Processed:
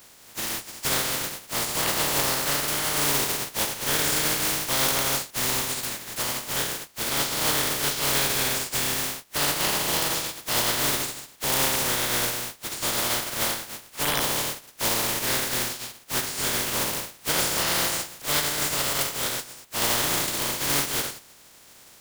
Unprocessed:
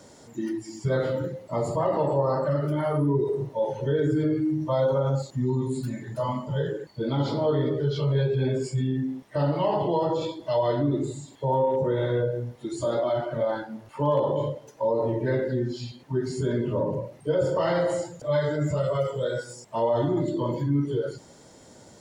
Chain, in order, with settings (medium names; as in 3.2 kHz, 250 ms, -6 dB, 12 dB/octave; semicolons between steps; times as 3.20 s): spectral contrast reduction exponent 0.14; wavefolder -11.5 dBFS